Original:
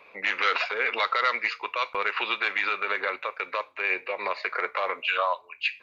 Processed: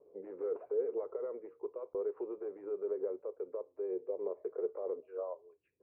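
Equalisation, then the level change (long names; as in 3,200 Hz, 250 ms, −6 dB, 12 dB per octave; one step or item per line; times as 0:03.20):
transistor ladder low-pass 460 Hz, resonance 65%
parametric band 220 Hz −11.5 dB 0.24 octaves
+4.0 dB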